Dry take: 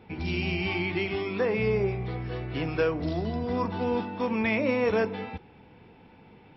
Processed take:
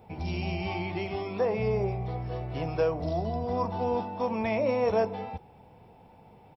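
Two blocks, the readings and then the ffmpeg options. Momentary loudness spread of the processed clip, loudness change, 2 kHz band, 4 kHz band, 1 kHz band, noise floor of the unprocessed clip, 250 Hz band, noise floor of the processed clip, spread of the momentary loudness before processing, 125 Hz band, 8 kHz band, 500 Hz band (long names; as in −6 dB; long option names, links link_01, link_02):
8 LU, −1.5 dB, −8.0 dB, −6.0 dB, +2.5 dB, −54 dBFS, −4.5 dB, −55 dBFS, 8 LU, −0.5 dB, can't be measured, −0.5 dB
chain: -af "firequalizer=gain_entry='entry(120,0);entry(290,-7);entry(670,6);entry(1500,-9);entry(4500,-5);entry(7600,12)':delay=0.05:min_phase=1"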